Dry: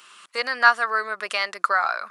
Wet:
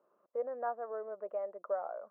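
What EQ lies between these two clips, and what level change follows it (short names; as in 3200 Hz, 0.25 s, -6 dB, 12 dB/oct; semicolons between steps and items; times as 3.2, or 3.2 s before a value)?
ladder low-pass 630 Hz, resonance 65%; low shelf 180 Hz -6 dB; 0.0 dB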